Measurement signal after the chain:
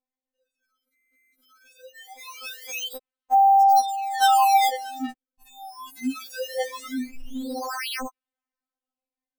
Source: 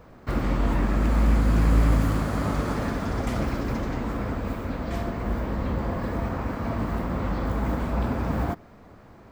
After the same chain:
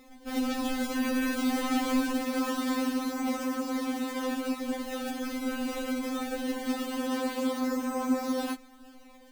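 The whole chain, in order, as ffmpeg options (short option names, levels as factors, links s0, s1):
-af "acrusher=samples=28:mix=1:aa=0.000001:lfo=1:lforange=44.8:lforate=0.22,afftfilt=real='re*3.46*eq(mod(b,12),0)':imag='im*3.46*eq(mod(b,12),0)':win_size=2048:overlap=0.75"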